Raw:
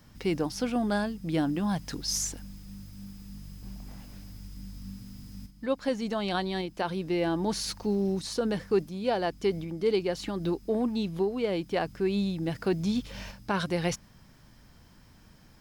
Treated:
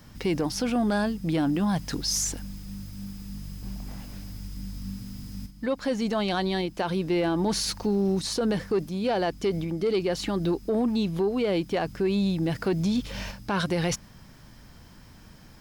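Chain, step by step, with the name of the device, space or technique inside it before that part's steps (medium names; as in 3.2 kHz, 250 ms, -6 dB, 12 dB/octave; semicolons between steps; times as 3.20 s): soft clipper into limiter (saturation -18 dBFS, distortion -23 dB; peak limiter -24.5 dBFS, peak gain reduction 5 dB); trim +6 dB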